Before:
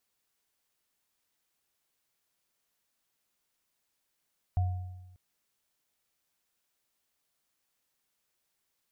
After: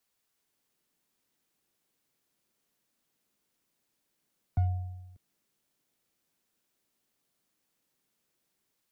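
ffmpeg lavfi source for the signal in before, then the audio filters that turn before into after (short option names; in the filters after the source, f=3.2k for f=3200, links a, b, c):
-f lavfi -i "aevalsrc='0.075*pow(10,-3*t/1.13)*sin(2*PI*91.4*t)+0.0141*pow(10,-3*t/0.85)*sin(2*PI*721*t)':d=0.59:s=44100"
-filter_complex "[0:a]acrossover=split=140|400[a][b][c];[b]dynaudnorm=f=300:g=3:m=10dB[d];[c]aeval=exprs='clip(val(0),-1,0.00501)':c=same[e];[a][d][e]amix=inputs=3:normalize=0"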